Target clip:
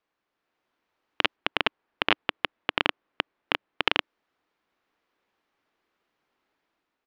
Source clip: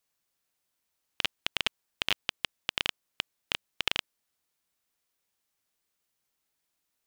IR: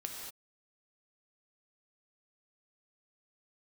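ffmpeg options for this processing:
-filter_complex "[0:a]asettb=1/sr,asplit=3[a][b][c];[a]atrim=end=1.364[d];[b]atrim=start=1.36:end=3.82,asetpts=PTS-STARTPTS,afade=t=in:d=0.004:c=qsin,afade=t=out:st=2.456:d=0.004:c=qsin,aemphasis=mode=reproduction:type=50fm[e];[c]atrim=start=3.816[f];[d][e]acrossfade=d=0.004:c1=hsin:c2=qsin[g];[g][f]acrossfade=d=0.004:c1=qsin:c2=hsin,dynaudnorm=f=210:g=5:m=5.5dB,firequalizer=gain_entry='entry(120,0);entry(300,11);entry(560,8);entry(1100,9);entry(8200,-20)':delay=0.05:min_phase=1,volume=-1.5dB"

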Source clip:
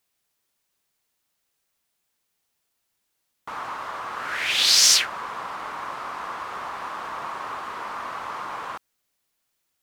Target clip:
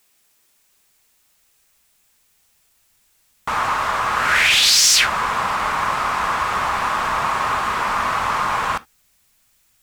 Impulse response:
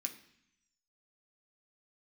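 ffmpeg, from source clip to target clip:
-filter_complex "[0:a]asubboost=boost=6.5:cutoff=120,acontrast=84,asplit=2[a][b];[1:a]atrim=start_sample=2205,atrim=end_sample=3528[c];[b][c]afir=irnorm=-1:irlink=0,volume=-4.5dB[d];[a][d]amix=inputs=2:normalize=0,alimiter=limit=-10dB:level=0:latency=1:release=33,volume=4dB"

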